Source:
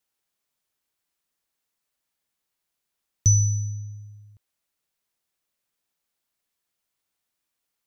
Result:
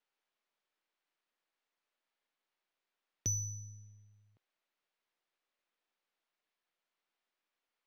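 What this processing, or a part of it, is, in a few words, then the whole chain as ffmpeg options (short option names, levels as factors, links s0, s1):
crystal radio: -af "highpass=310,lowpass=3300,aeval=exprs='if(lt(val(0),0),0.708*val(0),val(0))':c=same"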